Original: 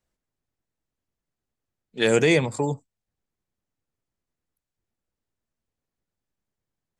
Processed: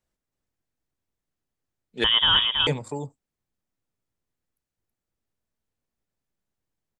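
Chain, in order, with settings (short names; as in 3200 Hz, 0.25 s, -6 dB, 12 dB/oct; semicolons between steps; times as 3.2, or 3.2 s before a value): echo 0.325 s -5.5 dB; 2.04–2.67 inverted band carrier 3500 Hz; gain -1.5 dB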